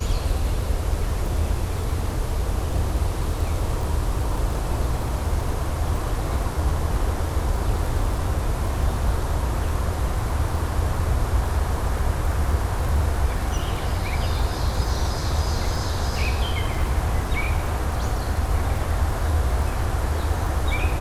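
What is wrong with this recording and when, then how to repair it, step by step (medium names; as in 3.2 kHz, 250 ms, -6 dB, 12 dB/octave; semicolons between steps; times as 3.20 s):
crackle 24 per s -29 dBFS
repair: de-click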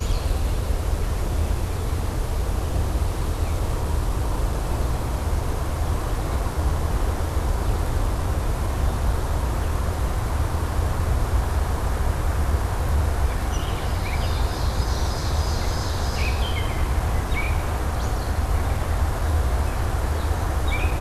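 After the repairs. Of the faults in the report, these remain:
nothing left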